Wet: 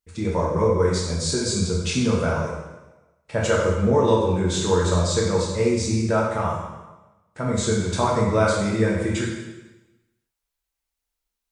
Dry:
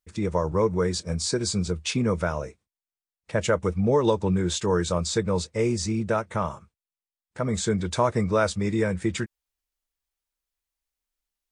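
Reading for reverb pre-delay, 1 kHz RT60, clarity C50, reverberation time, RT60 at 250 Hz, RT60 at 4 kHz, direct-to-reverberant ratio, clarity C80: 5 ms, 1.1 s, 1.5 dB, 1.1 s, 1.1 s, 1.0 s, -4.5 dB, 4.0 dB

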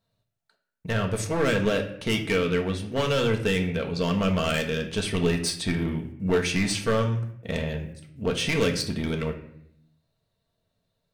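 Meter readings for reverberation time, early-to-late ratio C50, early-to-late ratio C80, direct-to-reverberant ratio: 0.70 s, 9.5 dB, 13.0 dB, 2.5 dB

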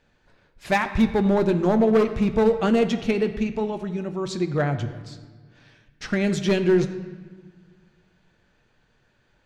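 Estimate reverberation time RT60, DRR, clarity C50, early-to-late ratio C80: 1.5 s, 7.0 dB, 11.0 dB, 12.0 dB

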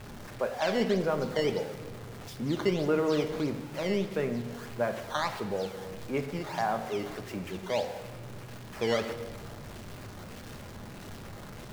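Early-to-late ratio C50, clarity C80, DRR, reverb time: 9.5 dB, 11.0 dB, 6.0 dB, 1.5 s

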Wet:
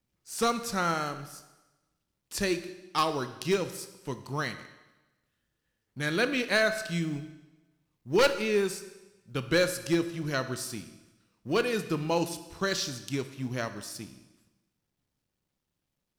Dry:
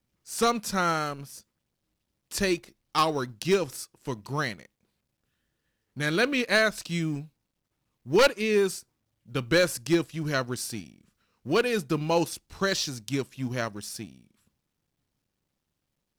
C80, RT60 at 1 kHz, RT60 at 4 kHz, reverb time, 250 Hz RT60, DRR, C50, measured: 13.5 dB, 1.1 s, 1.1 s, 1.1 s, 1.1 s, 10.0 dB, 11.5 dB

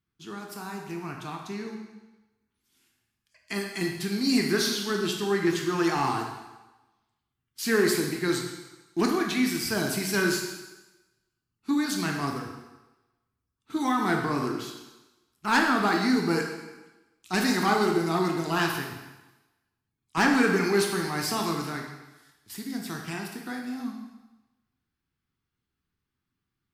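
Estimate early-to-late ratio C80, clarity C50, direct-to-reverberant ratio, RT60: 6.5 dB, 4.0 dB, 1.0 dB, 1.1 s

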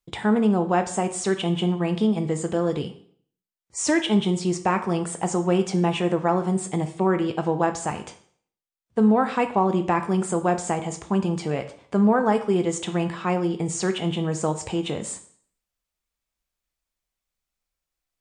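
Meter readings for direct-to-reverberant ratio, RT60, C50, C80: 8.0 dB, 0.55 s, 12.0 dB, 15.0 dB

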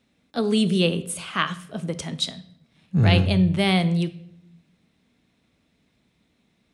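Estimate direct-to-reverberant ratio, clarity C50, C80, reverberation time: 11.0 dB, 15.5 dB, 19.0 dB, 0.70 s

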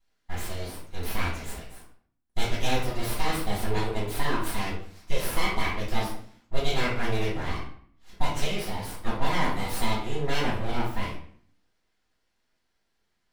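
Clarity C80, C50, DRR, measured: 8.5 dB, 3.5 dB, -8.5 dB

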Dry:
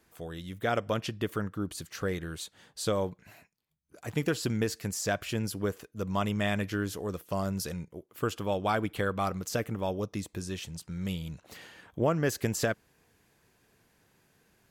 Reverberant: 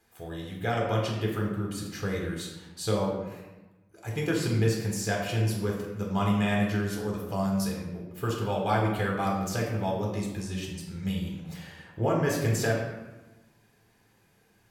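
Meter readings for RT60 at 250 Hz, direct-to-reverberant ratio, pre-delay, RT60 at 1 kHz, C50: 1.5 s, -2.0 dB, 7 ms, 1.1 s, 2.5 dB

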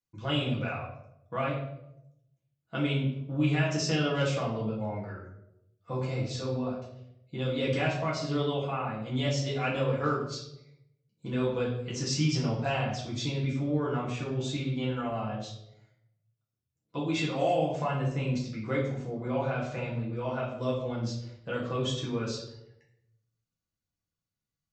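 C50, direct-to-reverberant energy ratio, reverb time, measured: 4.5 dB, -6.5 dB, 0.80 s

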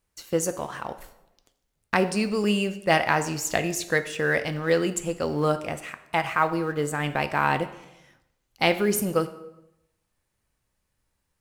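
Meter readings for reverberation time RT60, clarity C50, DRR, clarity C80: 0.90 s, 13.5 dB, 9.5 dB, 15.5 dB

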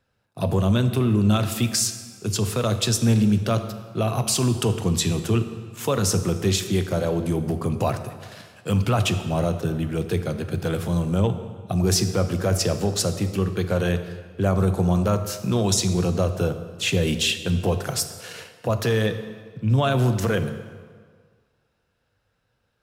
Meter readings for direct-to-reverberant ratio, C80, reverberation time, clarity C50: 8.5 dB, 11.0 dB, 1.8 s, 10.0 dB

